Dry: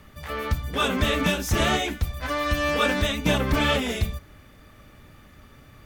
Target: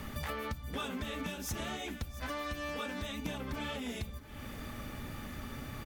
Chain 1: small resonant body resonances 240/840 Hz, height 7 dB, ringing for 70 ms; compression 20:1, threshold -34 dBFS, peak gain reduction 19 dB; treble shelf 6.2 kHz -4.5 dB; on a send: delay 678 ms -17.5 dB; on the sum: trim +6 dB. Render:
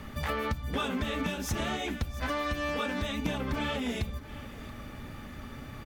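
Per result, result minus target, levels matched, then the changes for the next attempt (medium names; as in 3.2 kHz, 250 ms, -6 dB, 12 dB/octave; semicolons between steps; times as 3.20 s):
compression: peak gain reduction -7 dB; 8 kHz band -5.0 dB
change: compression 20:1, threshold -41.5 dBFS, peak gain reduction 26 dB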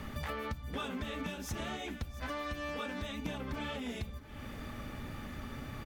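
8 kHz band -4.0 dB
change: treble shelf 6.2 kHz +3.5 dB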